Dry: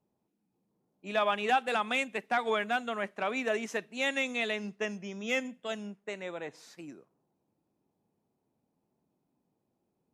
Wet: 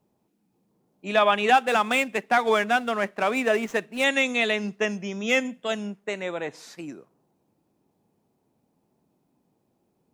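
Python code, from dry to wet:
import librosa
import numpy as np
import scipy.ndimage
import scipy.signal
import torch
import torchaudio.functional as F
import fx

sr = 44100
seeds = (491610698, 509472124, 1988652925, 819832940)

y = fx.median_filter(x, sr, points=9, at=(1.54, 4.04))
y = y * 10.0 ** (8.5 / 20.0)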